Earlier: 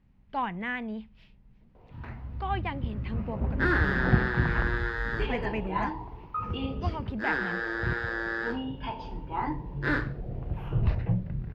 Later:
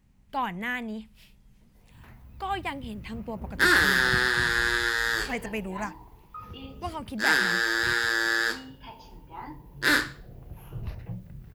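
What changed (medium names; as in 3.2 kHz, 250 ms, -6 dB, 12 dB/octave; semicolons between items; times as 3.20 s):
first sound -10.5 dB; second sound: add peaking EQ 4.2 kHz +11 dB 2.5 oct; master: remove distance through air 260 m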